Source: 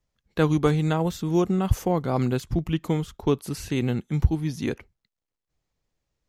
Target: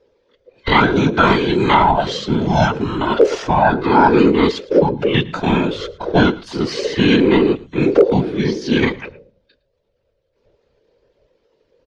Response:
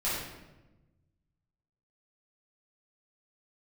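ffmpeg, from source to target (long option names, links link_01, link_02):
-filter_complex "[0:a]afftfilt=real='real(if(between(b,1,1008),(2*floor((b-1)/24)+1)*24-b,b),0)':imag='imag(if(between(b,1,1008),(2*floor((b-1)/24)+1)*24-b,b),0)*if(between(b,1,1008),-1,1)':win_size=2048:overlap=0.75,lowpass=frequency=4700:width=0.5412,lowpass=frequency=4700:width=1.3066,bandreject=frequency=60:width_type=h:width=6,bandreject=frequency=120:width_type=h:width=6,bandreject=frequency=180:width_type=h:width=6,aecho=1:1:4.4:0.98,acrossover=split=340|1300[link_01][link_02][link_03];[link_01]acompressor=threshold=-33dB:ratio=6[link_04];[link_04][link_02][link_03]amix=inputs=3:normalize=0,atempo=0.53,afftfilt=real='hypot(re,im)*cos(2*PI*random(0))':imag='hypot(re,im)*sin(2*PI*random(1))':win_size=512:overlap=0.75,asoftclip=type=hard:threshold=-11dB,aecho=1:1:110:0.0841,alimiter=level_in=20.5dB:limit=-1dB:release=50:level=0:latency=1,volume=-1dB"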